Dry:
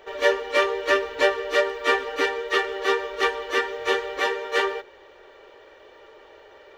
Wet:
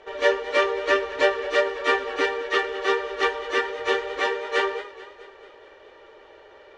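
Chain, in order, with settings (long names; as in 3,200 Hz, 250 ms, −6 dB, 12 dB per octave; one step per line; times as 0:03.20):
low-pass filter 9,100 Hz 24 dB per octave
high-shelf EQ 5,100 Hz −4.5 dB
feedback echo with a swinging delay time 217 ms, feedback 59%, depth 79 cents, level −17 dB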